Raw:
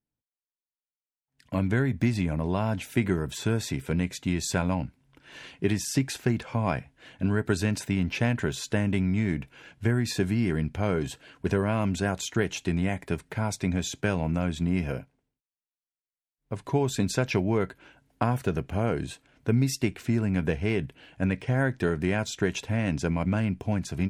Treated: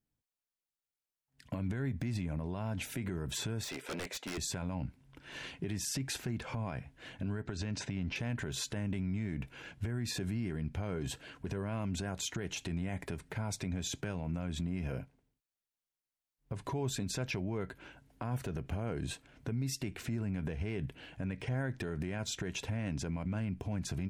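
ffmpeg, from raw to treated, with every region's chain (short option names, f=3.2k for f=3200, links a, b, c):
-filter_complex "[0:a]asettb=1/sr,asplit=3[a][b][c];[a]atrim=end=3.644[d];[b]atrim=start=3.64:end=4.38,asetpts=PTS-STARTPTS,afade=t=in:d=0.004:c=qsin,afade=t=out:st=0.736:d=0.004:c=qsin,highpass=f=550:t=q:w=1.6,highshelf=f=10k:g=-9.5,aeval=exprs='0.02*(abs(mod(val(0)/0.02+3,4)-2)-1)':c=same[e];[c]atrim=start=4.376[f];[d][e]acrossfade=d=0.004:c1=hsin:c2=qsin[g];[g][f]acrossfade=d=0.004:c1=qsin:c2=hsin,asettb=1/sr,asplit=3[h][i][j];[h]atrim=end=7.424[k];[i]atrim=start=7.42:end=8.16,asetpts=PTS-STARTPTS,afade=t=in:d=0.004:c=qsin,afade=t=out:st=0.736:d=0.004:c=qsin,lowpass=f=6.7k:w=0.5412,lowpass=f=6.7k:w=1.3066,acompressor=threshold=-33dB:ratio=12:attack=3.2:release=140:knee=1:detection=peak[l];[j]atrim=start=8.156[m];[k][l]acrossfade=d=0.004:c1=hsin:c2=qsin[n];[n][m]acrossfade=d=0.004:c1=qsin:c2=hsin,lowshelf=f=160:g=5,acompressor=threshold=-26dB:ratio=6,alimiter=level_in=3.5dB:limit=-24dB:level=0:latency=1:release=83,volume=-3.5dB"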